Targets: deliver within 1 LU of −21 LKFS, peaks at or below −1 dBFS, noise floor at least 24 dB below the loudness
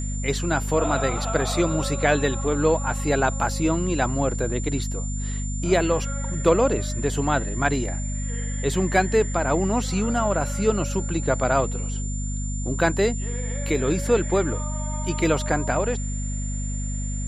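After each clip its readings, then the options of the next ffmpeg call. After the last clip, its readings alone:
mains hum 50 Hz; hum harmonics up to 250 Hz; level of the hum −25 dBFS; interfering tone 7,200 Hz; level of the tone −35 dBFS; integrated loudness −24.0 LKFS; sample peak −5.5 dBFS; target loudness −21.0 LKFS
→ -af "bandreject=frequency=50:width_type=h:width=4,bandreject=frequency=100:width_type=h:width=4,bandreject=frequency=150:width_type=h:width=4,bandreject=frequency=200:width_type=h:width=4,bandreject=frequency=250:width_type=h:width=4"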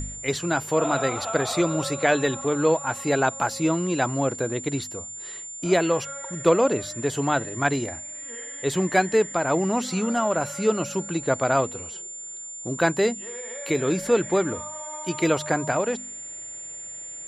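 mains hum none found; interfering tone 7,200 Hz; level of the tone −35 dBFS
→ -af "bandreject=frequency=7200:width=30"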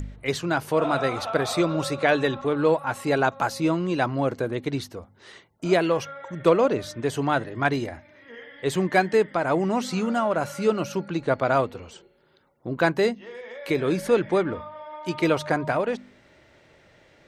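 interfering tone none found; integrated loudness −24.5 LKFS; sample peak −5.5 dBFS; target loudness −21.0 LKFS
→ -af "volume=3.5dB"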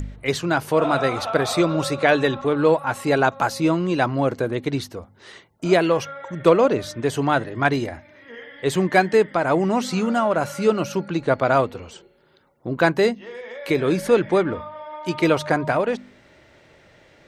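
integrated loudness −21.0 LKFS; sample peak −2.0 dBFS; background noise floor −54 dBFS

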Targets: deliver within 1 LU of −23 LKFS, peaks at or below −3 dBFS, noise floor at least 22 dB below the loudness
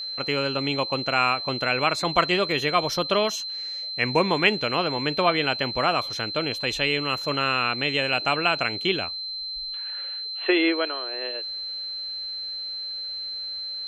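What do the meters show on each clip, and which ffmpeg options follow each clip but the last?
interfering tone 4,100 Hz; level of the tone −30 dBFS; integrated loudness −24.5 LKFS; sample peak −3.5 dBFS; target loudness −23.0 LKFS
→ -af "bandreject=frequency=4100:width=30"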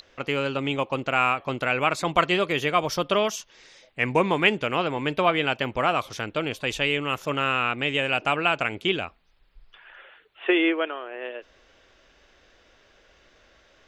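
interfering tone none found; integrated loudness −24.5 LKFS; sample peak −3.5 dBFS; target loudness −23.0 LKFS
→ -af "volume=1.5dB,alimiter=limit=-3dB:level=0:latency=1"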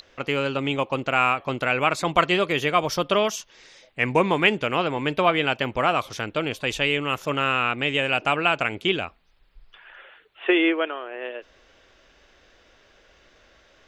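integrated loudness −23.0 LKFS; sample peak −3.0 dBFS; background noise floor −58 dBFS

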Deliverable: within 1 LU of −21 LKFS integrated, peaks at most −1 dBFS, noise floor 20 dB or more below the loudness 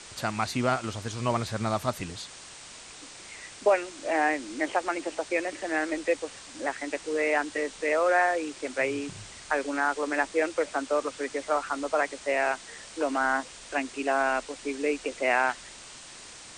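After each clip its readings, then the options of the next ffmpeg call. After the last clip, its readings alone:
background noise floor −46 dBFS; target noise floor −49 dBFS; integrated loudness −28.5 LKFS; sample peak −11.0 dBFS; target loudness −21.0 LKFS
→ -af "afftdn=noise_reduction=6:noise_floor=-46"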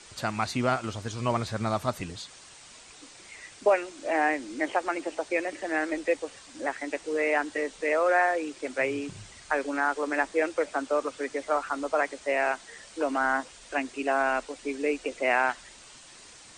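background noise floor −50 dBFS; integrated loudness −28.5 LKFS; sample peak −11.0 dBFS; target loudness −21.0 LKFS
→ -af "volume=7.5dB"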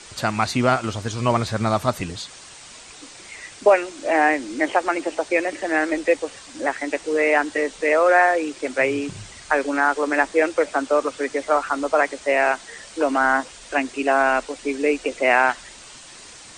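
integrated loudness −21.0 LKFS; sample peak −3.5 dBFS; background noise floor −43 dBFS

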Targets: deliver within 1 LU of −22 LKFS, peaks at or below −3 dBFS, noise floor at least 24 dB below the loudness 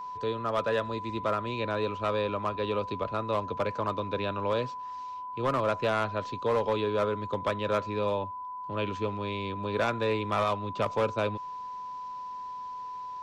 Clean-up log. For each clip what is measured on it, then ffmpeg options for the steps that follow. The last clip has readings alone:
interfering tone 1,000 Hz; level of the tone −36 dBFS; integrated loudness −31.0 LKFS; sample peak −19.0 dBFS; target loudness −22.0 LKFS
→ -af "bandreject=frequency=1000:width=30"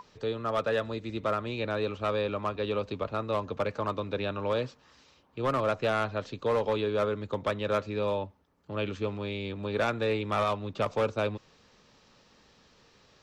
interfering tone none found; integrated loudness −31.0 LKFS; sample peak −18.5 dBFS; target loudness −22.0 LKFS
→ -af "volume=9dB"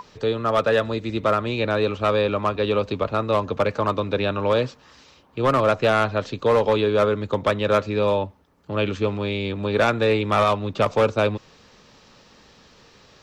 integrated loudness −22.0 LKFS; sample peak −9.5 dBFS; background noise floor −53 dBFS

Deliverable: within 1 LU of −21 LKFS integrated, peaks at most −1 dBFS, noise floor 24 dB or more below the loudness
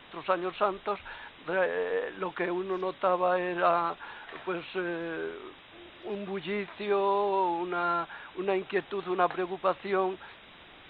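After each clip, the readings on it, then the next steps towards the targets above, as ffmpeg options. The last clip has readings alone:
background noise floor −52 dBFS; target noise floor −55 dBFS; integrated loudness −30.5 LKFS; sample peak −11.5 dBFS; target loudness −21.0 LKFS
→ -af "afftdn=noise_reduction=6:noise_floor=-52"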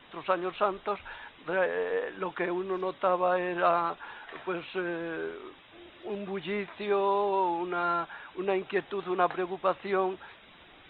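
background noise floor −55 dBFS; integrated loudness −30.5 LKFS; sample peak −11.5 dBFS; target loudness −21.0 LKFS
→ -af "volume=9.5dB"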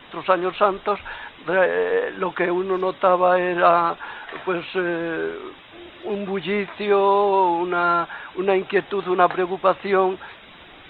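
integrated loudness −21.0 LKFS; sample peak −2.0 dBFS; background noise floor −45 dBFS

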